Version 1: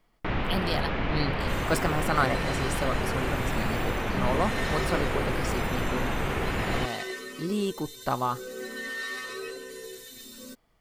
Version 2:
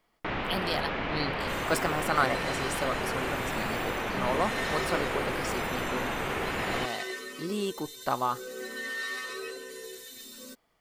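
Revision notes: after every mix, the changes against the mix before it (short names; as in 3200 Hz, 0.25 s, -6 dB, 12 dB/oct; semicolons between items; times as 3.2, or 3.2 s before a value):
master: add low shelf 170 Hz -12 dB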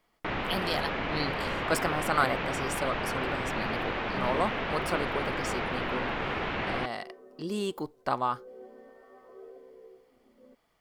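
second sound: add ladder low-pass 820 Hz, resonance 60%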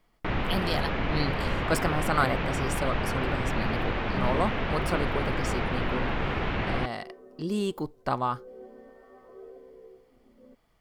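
master: add low shelf 170 Hz +12 dB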